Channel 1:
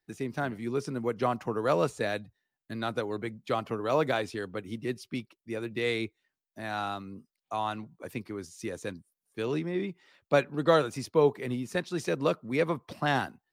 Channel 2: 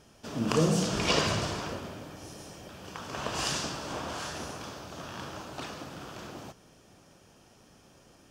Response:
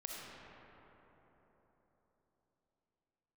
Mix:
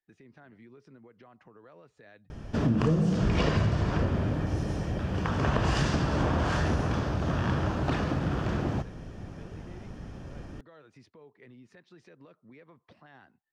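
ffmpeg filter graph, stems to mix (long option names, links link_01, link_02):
-filter_complex "[0:a]acompressor=threshold=-33dB:ratio=6,lowpass=3700,alimiter=level_in=9.5dB:limit=-24dB:level=0:latency=1:release=112,volume=-9.5dB,volume=-11.5dB[link_01];[1:a]acontrast=84,aemphasis=mode=reproduction:type=riaa,acompressor=threshold=-23dB:ratio=8,adelay=2300,volume=1dB[link_02];[link_01][link_02]amix=inputs=2:normalize=0,equalizer=frequency=1800:width_type=o:width=0.47:gain=5"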